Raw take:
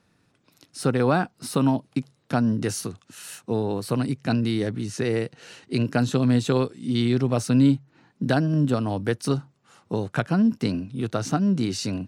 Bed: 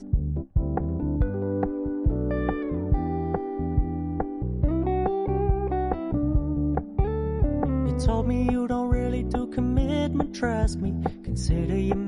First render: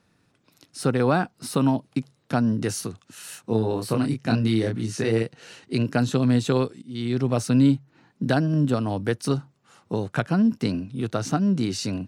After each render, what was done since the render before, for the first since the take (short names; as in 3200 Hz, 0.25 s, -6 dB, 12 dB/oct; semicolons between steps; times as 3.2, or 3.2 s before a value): 3.42–5.23 doubler 27 ms -4.5 dB; 6.82–7.27 fade in, from -23.5 dB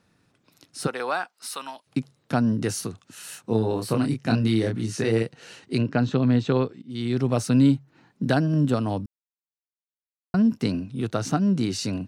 0.86–1.86 HPF 610 Hz -> 1500 Hz; 5.81–6.9 air absorption 160 m; 9.06–10.34 mute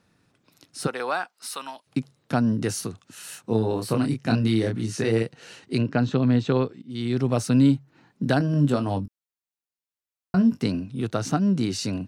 8.38–10.63 doubler 21 ms -8 dB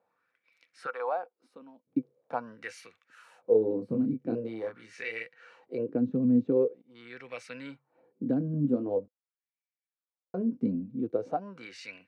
small resonant body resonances 500/2300 Hz, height 14 dB, ringing for 70 ms; wah 0.44 Hz 220–2200 Hz, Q 3.6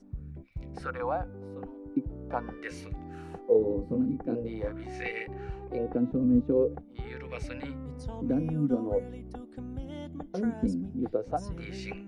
add bed -15.5 dB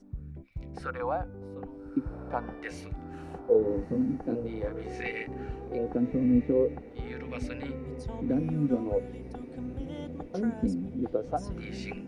diffused feedback echo 1.262 s, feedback 62%, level -16 dB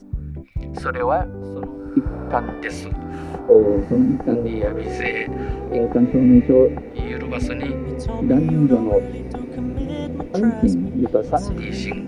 gain +12 dB; limiter -2 dBFS, peak gain reduction 1.5 dB